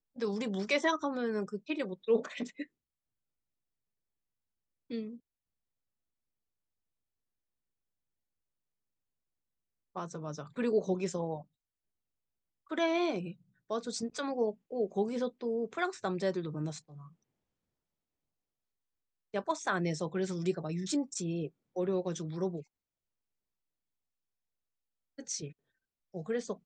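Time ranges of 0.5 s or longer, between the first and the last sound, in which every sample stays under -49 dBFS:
2.65–4.90 s
5.17–9.96 s
11.42–12.70 s
17.08–19.34 s
22.63–25.18 s
25.52–26.14 s

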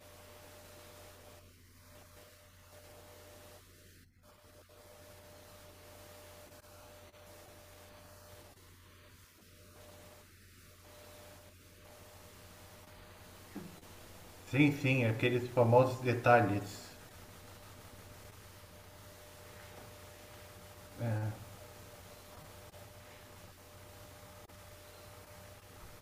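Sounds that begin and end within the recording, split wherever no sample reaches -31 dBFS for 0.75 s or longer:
14.54–16.58 s
21.03–21.29 s

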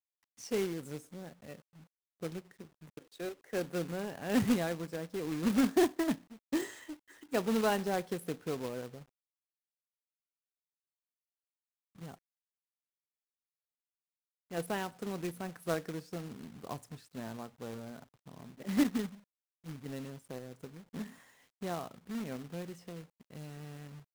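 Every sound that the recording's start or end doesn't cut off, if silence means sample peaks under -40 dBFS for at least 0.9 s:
12.02–12.14 s

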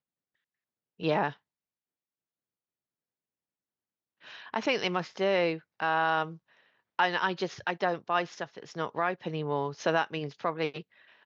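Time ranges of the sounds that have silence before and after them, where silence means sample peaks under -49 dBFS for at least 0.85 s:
1.00–1.36 s

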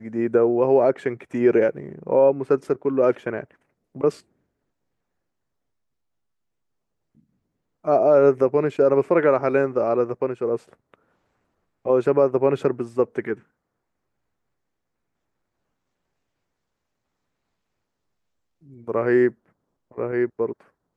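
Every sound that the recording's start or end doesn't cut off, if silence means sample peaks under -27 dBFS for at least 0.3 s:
3.96–4.10 s
7.87–10.56 s
11.86–13.33 s
18.88–19.28 s
19.98–20.52 s

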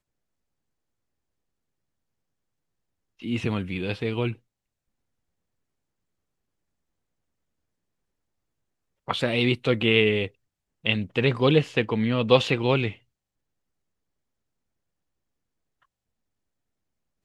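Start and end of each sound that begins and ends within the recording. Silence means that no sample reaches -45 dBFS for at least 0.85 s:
3.20–4.35 s
9.07–12.96 s

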